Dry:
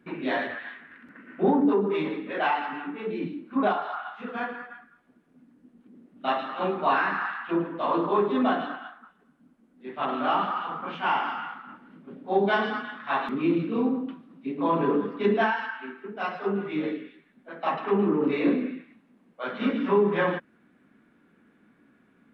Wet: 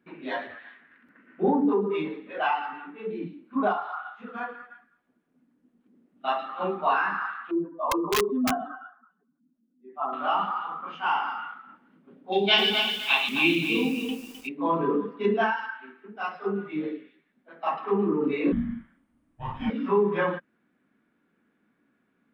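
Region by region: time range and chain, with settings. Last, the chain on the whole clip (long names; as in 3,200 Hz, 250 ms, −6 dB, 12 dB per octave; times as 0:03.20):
0:07.51–0:10.13: expanding power law on the bin magnitudes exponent 1.8 + wrap-around overflow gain 16.5 dB
0:12.32–0:14.49: high shelf with overshoot 1,900 Hz +11.5 dB, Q 3 + feedback echo at a low word length 260 ms, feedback 35%, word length 7 bits, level −5 dB
0:18.52–0:19.70: frequency shifter −490 Hz + double-tracking delay 43 ms −3.5 dB
whole clip: noise reduction from a noise print of the clip's start 8 dB; low-shelf EQ 200 Hz −4 dB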